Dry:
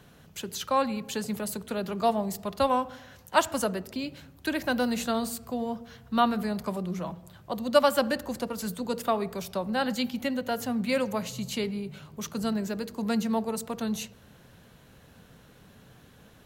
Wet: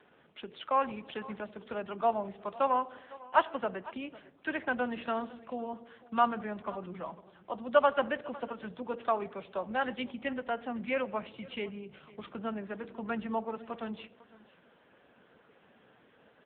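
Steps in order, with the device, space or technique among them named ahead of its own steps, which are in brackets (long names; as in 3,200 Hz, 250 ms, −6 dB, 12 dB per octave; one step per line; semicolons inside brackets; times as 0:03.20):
dynamic equaliser 400 Hz, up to −4 dB, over −37 dBFS, Q 0.82
satellite phone (band-pass filter 320–3,100 Hz; single-tap delay 502 ms −20 dB; AMR narrowband 6.7 kbit/s 8,000 Hz)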